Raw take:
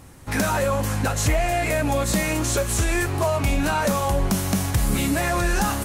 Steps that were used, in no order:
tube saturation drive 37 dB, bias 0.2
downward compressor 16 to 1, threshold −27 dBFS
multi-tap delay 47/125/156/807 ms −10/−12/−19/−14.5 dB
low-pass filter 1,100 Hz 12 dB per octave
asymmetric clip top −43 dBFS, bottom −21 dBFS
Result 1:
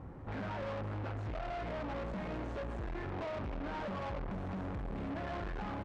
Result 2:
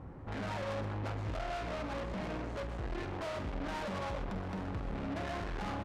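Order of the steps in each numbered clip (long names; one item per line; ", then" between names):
asymmetric clip, then multi-tap delay, then downward compressor, then low-pass filter, then tube saturation
low-pass filter, then asymmetric clip, then downward compressor, then tube saturation, then multi-tap delay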